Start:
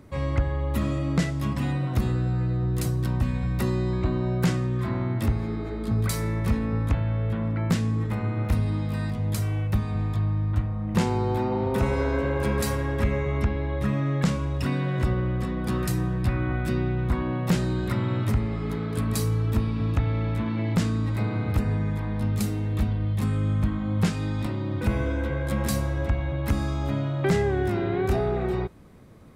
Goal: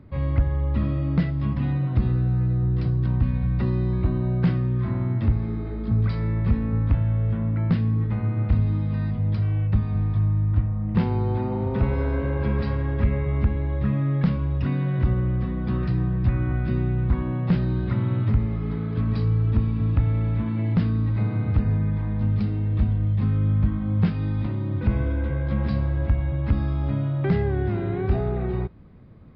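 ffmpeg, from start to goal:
-af "aresample=11025,aresample=44100,bass=f=250:g=8,treble=f=4k:g=-10,asoftclip=type=hard:threshold=-8dB,volume=-4dB"

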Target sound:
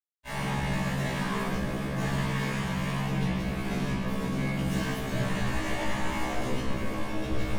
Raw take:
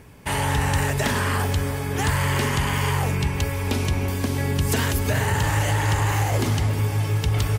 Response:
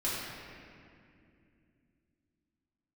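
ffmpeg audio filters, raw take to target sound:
-filter_complex "[0:a]alimiter=limit=-16.5dB:level=0:latency=1:release=236,adynamicequalizer=threshold=0.0126:dfrequency=180:dqfactor=1.2:tfrequency=180:tqfactor=1.2:attack=5:release=100:ratio=0.375:range=2.5:mode=boostabove:tftype=bell,acrusher=bits=3:mix=0:aa=0.5,aeval=exprs='sgn(val(0))*max(abs(val(0))-0.0126,0)':c=same,tremolo=f=110:d=0.824,highshelf=f=5.1k:g=-9.5[a];[1:a]atrim=start_sample=2205,afade=t=out:st=0.39:d=0.01,atrim=end_sample=17640,asetrate=74970,aresample=44100[b];[a][b]afir=irnorm=-1:irlink=0,afftfilt=real='re*1.73*eq(mod(b,3),0)':imag='im*1.73*eq(mod(b,3),0)':win_size=2048:overlap=0.75,volume=-1dB"

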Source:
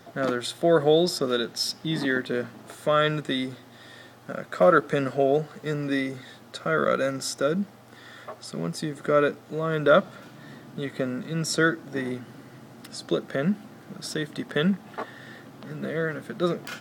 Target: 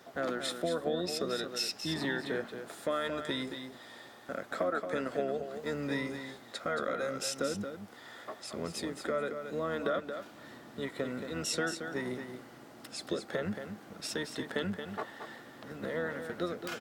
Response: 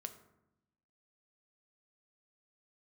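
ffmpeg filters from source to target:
-filter_complex "[0:a]highpass=270,acompressor=threshold=-26dB:ratio=6,asplit=2[a][b];[b]asetrate=22050,aresample=44100,atempo=2,volume=-11dB[c];[a][c]amix=inputs=2:normalize=0,asplit=2[d][e];[e]aecho=0:1:225:0.398[f];[d][f]amix=inputs=2:normalize=0,volume=-4dB"

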